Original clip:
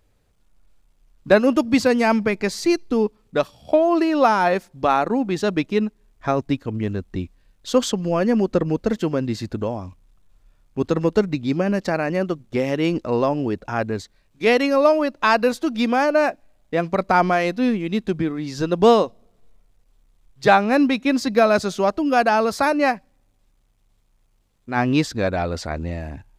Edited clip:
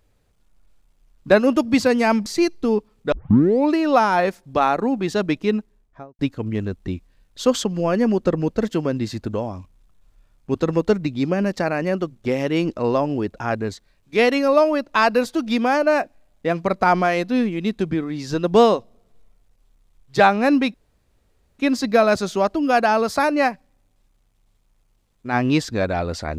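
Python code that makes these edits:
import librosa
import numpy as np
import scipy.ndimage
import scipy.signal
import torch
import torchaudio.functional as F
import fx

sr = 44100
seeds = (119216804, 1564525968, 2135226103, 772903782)

y = fx.studio_fade_out(x, sr, start_s=5.83, length_s=0.64)
y = fx.edit(y, sr, fx.cut(start_s=2.26, length_s=0.28),
    fx.tape_start(start_s=3.4, length_s=0.61),
    fx.insert_room_tone(at_s=21.02, length_s=0.85), tone=tone)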